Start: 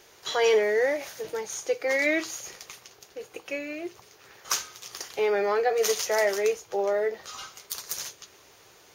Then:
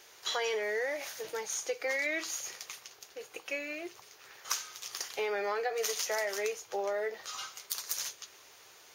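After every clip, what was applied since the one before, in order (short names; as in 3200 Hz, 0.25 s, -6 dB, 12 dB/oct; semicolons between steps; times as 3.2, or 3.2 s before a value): low shelf 490 Hz -11.5 dB; compressor 10:1, threshold -29 dBFS, peak gain reduction 8 dB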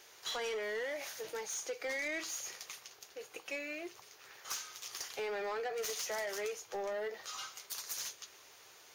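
soft clip -31 dBFS, distortion -13 dB; gain -2 dB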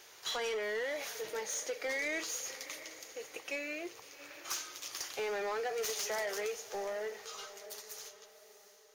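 ending faded out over 2.73 s; diffused feedback echo 0.713 s, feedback 42%, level -14.5 dB; gain +2 dB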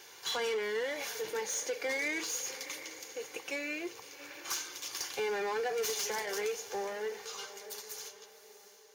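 in parallel at -10 dB: hard clip -39.5 dBFS, distortion -9 dB; on the sum: notch comb 640 Hz; gain +2 dB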